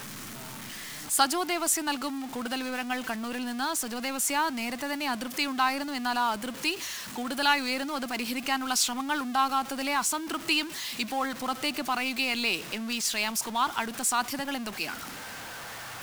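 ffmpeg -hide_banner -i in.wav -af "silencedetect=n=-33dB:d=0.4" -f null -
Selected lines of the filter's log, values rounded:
silence_start: 0.00
silence_end: 1.10 | silence_duration: 1.10
silence_start: 15.08
silence_end: 16.02 | silence_duration: 0.94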